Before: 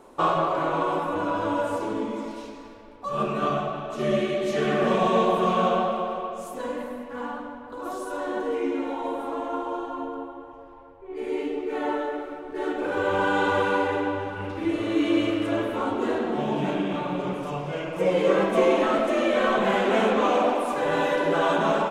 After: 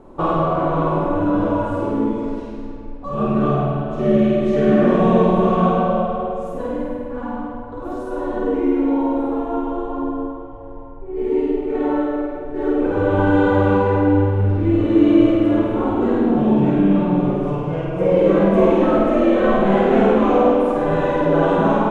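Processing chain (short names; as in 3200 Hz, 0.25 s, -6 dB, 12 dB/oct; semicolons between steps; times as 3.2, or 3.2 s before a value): tilt -4 dB/oct; flutter echo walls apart 8.7 m, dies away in 0.97 s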